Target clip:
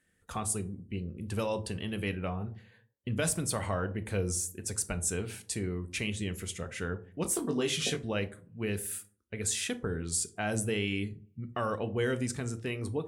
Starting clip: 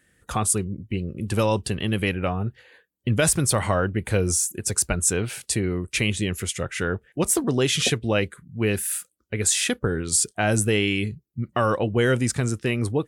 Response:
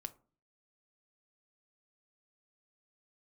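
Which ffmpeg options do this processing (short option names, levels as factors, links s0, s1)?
-filter_complex "[0:a]asettb=1/sr,asplit=3[s0][s1][s2];[s0]atrim=end=7.234[s3];[s1]atrim=start=7.23:end=7.97,asetpts=PTS-STARTPTS,afade=t=in:d=0.004:c=qsin,afade=t=out:st=0.736:d=0.004:c=qsin,asplit=2[s4][s5];[s5]adelay=20,volume=0.562[s6];[s4][s6]amix=inputs=2:normalize=0,atrim=end_sample=32634[s7];[s2]atrim=start=7.966[s8];[s3][s7]acrossfade=d=0.004:c1=hsin:c2=qsin[s9];[s9][s8]acrossfade=d=0.004:c1=qsin:c2=hsin[s10];[1:a]atrim=start_sample=2205,afade=t=out:st=0.38:d=0.01,atrim=end_sample=17199,asetrate=33516,aresample=44100[s11];[s10][s11]afir=irnorm=-1:irlink=0,volume=0.398"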